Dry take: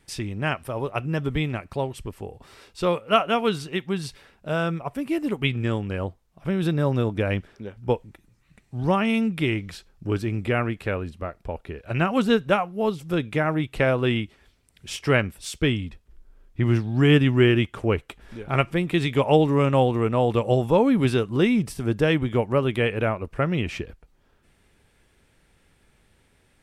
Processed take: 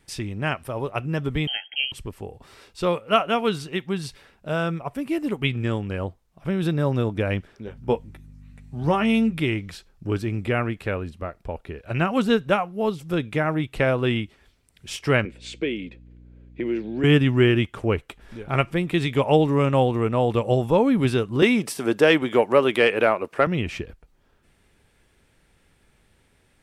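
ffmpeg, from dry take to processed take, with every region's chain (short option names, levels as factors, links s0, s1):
-filter_complex "[0:a]asettb=1/sr,asplit=3[s0][s1][s2];[s0]atrim=end=1.474[s3];[s1]atrim=start=1.47:end=1.92,asetpts=PTS-STARTPTS,afade=t=in:d=0.004:c=qsin,afade=t=out:st=0.446:d=0.004:c=qsin,lowpass=f=2800:t=q:w=0.5098,lowpass=f=2800:t=q:w=0.6013,lowpass=f=2800:t=q:w=0.9,lowpass=f=2800:t=q:w=2.563,afreqshift=-3300,asuperstop=centerf=1100:order=20:qfactor=2.1[s4];[s2]atrim=start=1.916[s5];[s3][s4]acrossfade=d=0.004:c1=hsin:c2=qsin[s6];[s6][s5]acrossfade=d=0.004:c1=qsin:c2=hsin,asettb=1/sr,asplit=3[s7][s8][s9];[s7]atrim=end=7.664[s10];[s8]atrim=start=7.66:end=9.4,asetpts=PTS-STARTPTS,afade=t=in:d=0.004:c=qsin,afade=t=out:st=1.736:d=0.004:c=qsin,aeval=exprs='val(0)+0.00708*(sin(2*PI*50*n/s)+sin(2*PI*2*50*n/s)/2+sin(2*PI*3*50*n/s)/3+sin(2*PI*4*50*n/s)/4+sin(2*PI*5*50*n/s)/5)':c=same,asplit=2[s11][s12];[s12]adelay=13,volume=0.447[s13];[s11][s13]amix=inputs=2:normalize=0,atrim=end_sample=76734[s14];[s9]atrim=start=9.396[s15];[s10][s14]acrossfade=d=0.004:c1=hsin:c2=qsin[s16];[s16][s15]acrossfade=d=0.004:c1=qsin:c2=hsin,asettb=1/sr,asplit=3[s17][s18][s19];[s17]atrim=end=15.254[s20];[s18]atrim=start=15.25:end=17.04,asetpts=PTS-STARTPTS,afade=t=in:d=0.004:c=qsin,afade=t=out:st=1.786:d=0.004:c=qsin,highpass=f=190:w=0.5412,highpass=f=190:w=1.3066,equalizer=f=350:t=q:w=4:g=8,equalizer=f=500:t=q:w=4:g=10,equalizer=f=820:t=q:w=4:g=-5,equalizer=f=1200:t=q:w=4:g=-9,equalizer=f=2300:t=q:w=4:g=7,equalizer=f=5500:t=q:w=4:g=-10,lowpass=f=6400:w=0.5412,lowpass=f=6400:w=1.3066,acompressor=threshold=0.0447:ratio=2:attack=3.2:release=140:knee=1:detection=peak,aeval=exprs='val(0)+0.00501*(sin(2*PI*60*n/s)+sin(2*PI*2*60*n/s)/2+sin(2*PI*3*60*n/s)/3+sin(2*PI*4*60*n/s)/4+sin(2*PI*5*60*n/s)/5)':c=same[s21];[s19]atrim=start=17.036[s22];[s20][s21]acrossfade=d=0.004:c1=hsin:c2=qsin[s23];[s23][s22]acrossfade=d=0.004:c1=qsin:c2=hsin,asettb=1/sr,asplit=3[s24][s25][s26];[s24]atrim=end=21.424[s27];[s25]atrim=start=21.42:end=23.47,asetpts=PTS-STARTPTS,afade=t=in:d=0.004:c=qsin,afade=t=out:st=2.046:d=0.004:c=qsin,highpass=330,acontrast=73[s28];[s26]atrim=start=23.466[s29];[s27][s28]acrossfade=d=0.004:c1=hsin:c2=qsin[s30];[s30][s29]acrossfade=d=0.004:c1=qsin:c2=hsin"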